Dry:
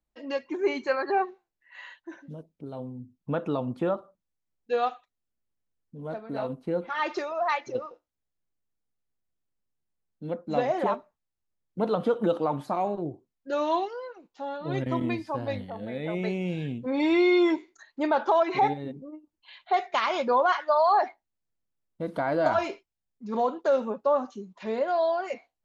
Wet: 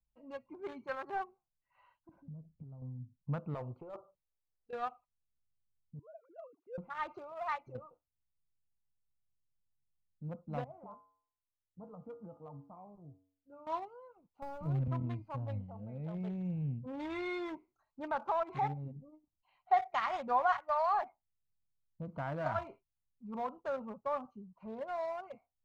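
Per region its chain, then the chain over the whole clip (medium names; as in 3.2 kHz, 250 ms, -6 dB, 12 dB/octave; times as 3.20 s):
2.09–2.82 s: bass shelf 450 Hz +11 dB + compression 16:1, threshold -40 dBFS
3.54–4.73 s: hard clipper -21.5 dBFS + resonant low shelf 290 Hz -8.5 dB, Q 3 + compressor with a negative ratio -29 dBFS
5.99–6.78 s: formants replaced by sine waves + high-pass 510 Hz 6 dB/octave
10.64–13.67 s: low-pass 1.6 kHz + feedback comb 94 Hz, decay 0.54 s, harmonics odd, mix 80%
14.42–14.88 s: jump at every zero crossing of -39.5 dBFS + three bands compressed up and down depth 70%
18.95–20.86 s: treble shelf 5.7 kHz +4.5 dB + small resonant body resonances 750/1900 Hz, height 12 dB, ringing for 65 ms
whole clip: local Wiener filter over 25 samples; FFT filter 140 Hz 0 dB, 340 Hz -19 dB, 1.2 kHz -6 dB, 4 kHz -15 dB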